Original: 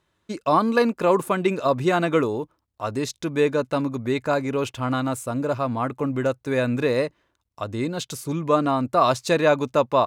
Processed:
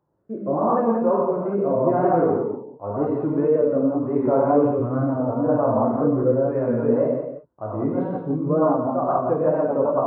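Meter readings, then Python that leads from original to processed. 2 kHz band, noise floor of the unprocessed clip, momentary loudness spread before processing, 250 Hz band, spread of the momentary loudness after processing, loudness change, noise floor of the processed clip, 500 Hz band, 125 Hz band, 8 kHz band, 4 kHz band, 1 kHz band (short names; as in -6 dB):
-13.0 dB, -73 dBFS, 9 LU, +3.0 dB, 8 LU, +2.0 dB, -45 dBFS, +2.5 dB, +1.0 dB, under -40 dB, under -35 dB, -0.5 dB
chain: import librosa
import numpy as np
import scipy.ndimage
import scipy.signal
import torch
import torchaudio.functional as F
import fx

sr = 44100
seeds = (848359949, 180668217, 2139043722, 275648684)

y = fx.rider(x, sr, range_db=5, speed_s=0.5)
y = fx.highpass(y, sr, hz=210.0, slope=6)
y = fx.rev_gated(y, sr, seeds[0], gate_ms=220, shape='flat', drr_db=-5.0)
y = fx.rotary_switch(y, sr, hz=0.85, then_hz=7.0, switch_at_s=8.34)
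y = scipy.signal.sosfilt(scipy.signal.butter(4, 1000.0, 'lowpass', fs=sr, output='sos'), y)
y = fx.wow_flutter(y, sr, seeds[1], rate_hz=2.1, depth_cents=85.0)
y = y + 10.0 ** (-9.0 / 20.0) * np.pad(y, (int(172 * sr / 1000.0), 0))[:len(y)]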